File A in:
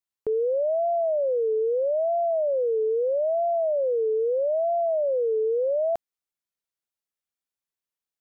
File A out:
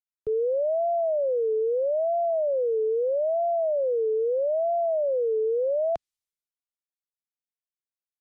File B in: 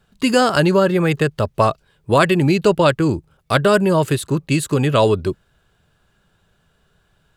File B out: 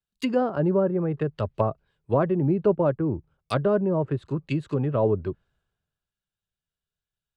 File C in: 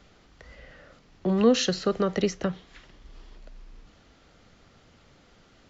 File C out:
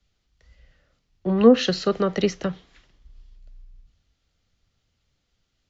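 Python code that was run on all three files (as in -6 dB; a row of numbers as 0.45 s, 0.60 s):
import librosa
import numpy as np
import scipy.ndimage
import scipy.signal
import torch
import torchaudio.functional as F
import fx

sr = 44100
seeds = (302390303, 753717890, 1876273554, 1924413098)

y = fx.env_lowpass_down(x, sr, base_hz=740.0, full_db=-12.5)
y = fx.band_widen(y, sr, depth_pct=70)
y = y * 10.0 ** (-26 / 20.0) / np.sqrt(np.mean(np.square(y)))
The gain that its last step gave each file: -0.5 dB, -7.0 dB, +0.5 dB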